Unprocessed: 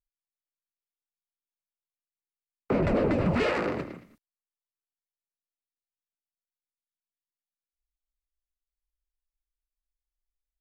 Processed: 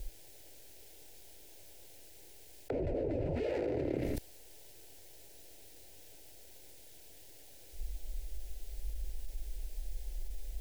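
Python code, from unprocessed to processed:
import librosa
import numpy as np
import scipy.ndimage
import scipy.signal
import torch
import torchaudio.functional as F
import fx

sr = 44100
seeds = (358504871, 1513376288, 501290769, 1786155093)

y = fx.gate_flip(x, sr, shuts_db=-33.0, range_db=-25)
y = fx.leveller(y, sr, passes=1)
y = fx.tilt_shelf(y, sr, db=6.5, hz=760.0)
y = fx.fixed_phaser(y, sr, hz=480.0, stages=4)
y = fx.env_flatten(y, sr, amount_pct=100)
y = F.gain(torch.from_numpy(y), 7.0).numpy()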